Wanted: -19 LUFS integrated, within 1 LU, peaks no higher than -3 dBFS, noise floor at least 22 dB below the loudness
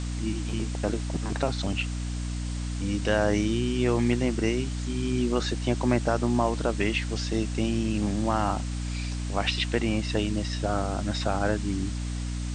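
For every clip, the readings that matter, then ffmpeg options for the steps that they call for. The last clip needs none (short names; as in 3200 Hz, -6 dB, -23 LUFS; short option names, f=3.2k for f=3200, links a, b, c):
hum 60 Hz; harmonics up to 300 Hz; hum level -28 dBFS; noise floor -31 dBFS; noise floor target -50 dBFS; loudness -28.0 LUFS; peak -8.5 dBFS; loudness target -19.0 LUFS
-> -af "bandreject=f=60:t=h:w=4,bandreject=f=120:t=h:w=4,bandreject=f=180:t=h:w=4,bandreject=f=240:t=h:w=4,bandreject=f=300:t=h:w=4"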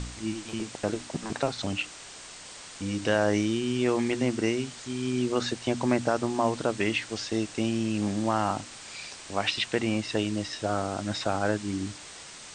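hum none; noise floor -45 dBFS; noise floor target -51 dBFS
-> -af "afftdn=nr=6:nf=-45"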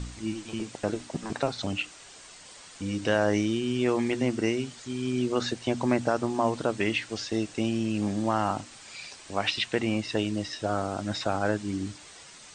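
noise floor -49 dBFS; noise floor target -51 dBFS
-> -af "afftdn=nr=6:nf=-49"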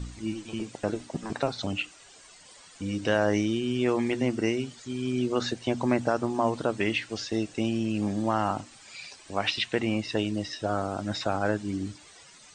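noise floor -52 dBFS; loudness -29.0 LUFS; peak -10.0 dBFS; loudness target -19.0 LUFS
-> -af "volume=10dB,alimiter=limit=-3dB:level=0:latency=1"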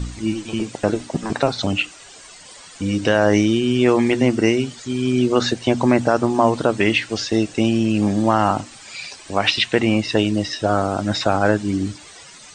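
loudness -19.5 LUFS; peak -3.0 dBFS; noise floor -42 dBFS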